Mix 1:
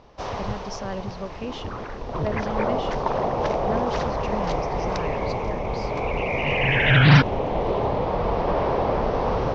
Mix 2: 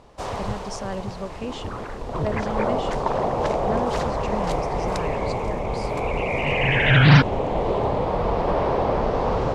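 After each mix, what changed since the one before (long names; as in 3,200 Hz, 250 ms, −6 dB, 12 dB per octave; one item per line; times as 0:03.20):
master: remove elliptic low-pass filter 6,000 Hz, stop band 60 dB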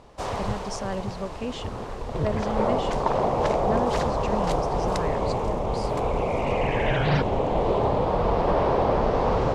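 second sound −11.5 dB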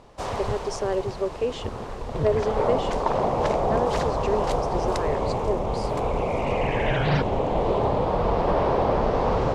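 speech: add high-pass with resonance 400 Hz, resonance Q 4.2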